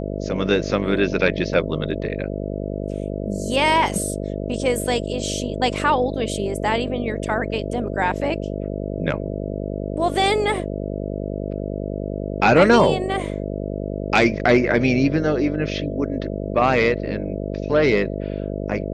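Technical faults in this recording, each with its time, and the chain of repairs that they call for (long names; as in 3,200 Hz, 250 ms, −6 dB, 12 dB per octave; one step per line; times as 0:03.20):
mains buzz 50 Hz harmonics 13 −27 dBFS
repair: hum removal 50 Hz, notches 13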